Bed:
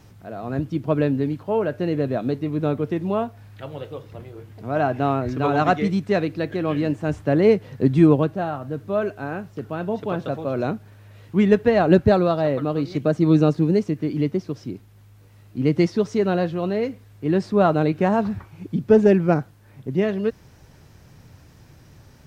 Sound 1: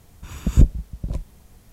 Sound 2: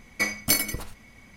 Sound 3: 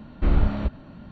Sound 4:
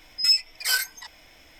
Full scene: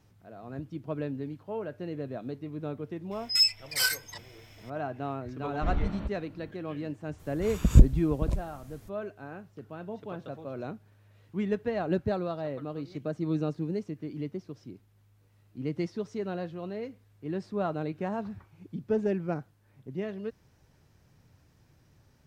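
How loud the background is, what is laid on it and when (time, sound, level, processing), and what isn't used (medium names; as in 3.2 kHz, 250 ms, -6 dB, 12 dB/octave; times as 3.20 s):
bed -13.5 dB
3.11 s: add 4 -3 dB
5.40 s: add 3 -9.5 dB
7.18 s: add 1 -1.5 dB, fades 0.02 s
not used: 2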